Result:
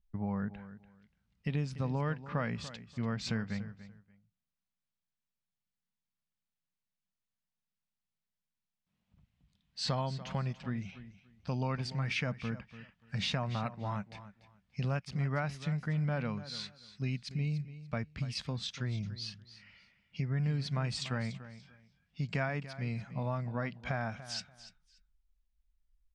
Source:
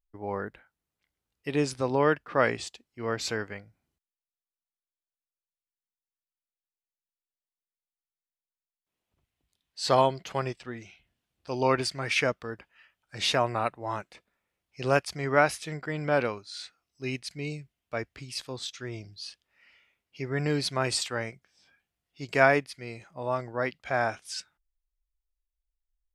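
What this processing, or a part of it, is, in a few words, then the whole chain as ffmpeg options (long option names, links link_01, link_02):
jukebox: -af "lowpass=5200,lowshelf=frequency=260:width_type=q:width=3:gain=9,acompressor=threshold=-34dB:ratio=4,aecho=1:1:290|580:0.188|0.0396,volume=1dB"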